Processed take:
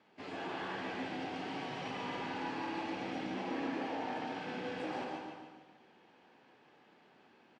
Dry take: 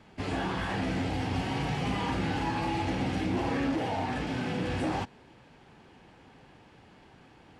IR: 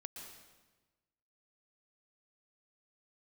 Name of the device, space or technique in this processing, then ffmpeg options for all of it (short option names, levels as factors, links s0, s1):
supermarket ceiling speaker: -filter_complex "[0:a]highpass=270,lowpass=5300,aecho=1:1:146|292|438|584|730:0.447|0.188|0.0788|0.0331|0.0139[s0];[1:a]atrim=start_sample=2205[s1];[s0][s1]afir=irnorm=-1:irlink=0,volume=0.668"